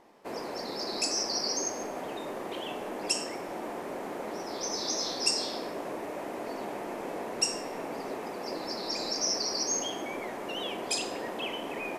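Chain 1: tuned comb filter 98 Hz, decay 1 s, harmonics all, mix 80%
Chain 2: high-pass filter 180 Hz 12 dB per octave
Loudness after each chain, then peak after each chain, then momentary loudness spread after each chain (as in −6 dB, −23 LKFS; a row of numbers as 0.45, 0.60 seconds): −43.5, −32.5 LKFS; −23.0, −11.5 dBFS; 9, 10 LU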